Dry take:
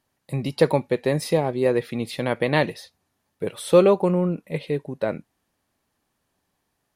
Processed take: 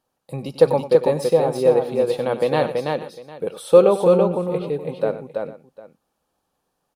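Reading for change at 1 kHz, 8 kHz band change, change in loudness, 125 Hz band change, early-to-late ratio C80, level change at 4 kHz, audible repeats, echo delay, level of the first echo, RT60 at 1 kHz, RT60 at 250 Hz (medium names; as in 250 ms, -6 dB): +3.5 dB, no reading, +4.0 dB, -2.0 dB, no reverb, -1.5 dB, 4, 95 ms, -13.5 dB, no reverb, no reverb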